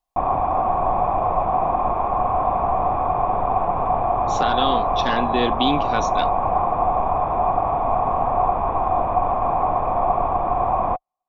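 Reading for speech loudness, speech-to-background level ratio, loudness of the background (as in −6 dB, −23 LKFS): −25.0 LKFS, −4.0 dB, −21.0 LKFS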